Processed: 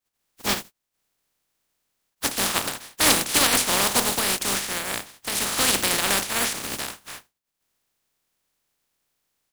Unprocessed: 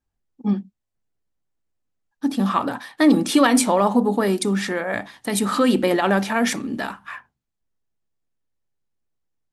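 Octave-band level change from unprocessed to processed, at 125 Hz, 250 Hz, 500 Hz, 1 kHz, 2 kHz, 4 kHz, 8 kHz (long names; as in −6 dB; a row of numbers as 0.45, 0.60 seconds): −8.5, −14.0, −9.0, −4.5, +0.5, +7.0, +8.0 decibels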